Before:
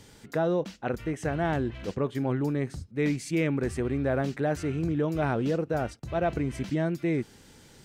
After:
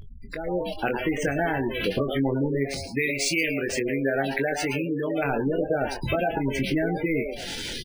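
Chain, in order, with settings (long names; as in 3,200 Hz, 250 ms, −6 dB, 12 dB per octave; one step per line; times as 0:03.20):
meter weighting curve D
downward compressor 8 to 1, threshold −39 dBFS, peak gain reduction 19.5 dB
echo with shifted repeats 111 ms, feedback 38%, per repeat +130 Hz, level −7 dB
automatic gain control gain up to 16.5 dB
background noise brown −41 dBFS
0:02.64–0:05.25: spectral tilt +1.5 dB per octave
gate on every frequency bin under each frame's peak −15 dB strong
double-tracking delay 22 ms −7.5 dB
linearly interpolated sample-rate reduction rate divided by 3×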